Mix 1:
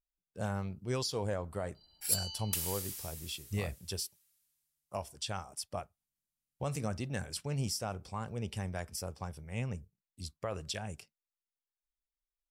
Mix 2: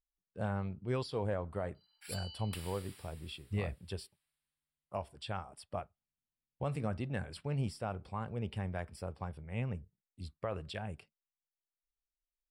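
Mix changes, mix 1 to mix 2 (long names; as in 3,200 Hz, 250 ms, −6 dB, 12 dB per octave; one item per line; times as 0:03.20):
first sound: add high-pass filter 1,100 Hz 24 dB per octave
master: add moving average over 7 samples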